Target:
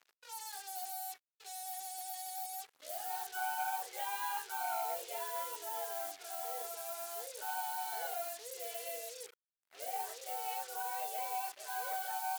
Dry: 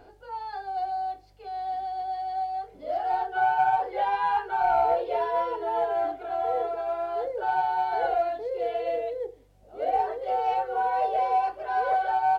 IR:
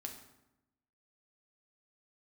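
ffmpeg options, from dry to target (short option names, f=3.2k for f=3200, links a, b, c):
-af "acrusher=bits=6:mix=0:aa=0.5,aderivative,volume=3.5dB"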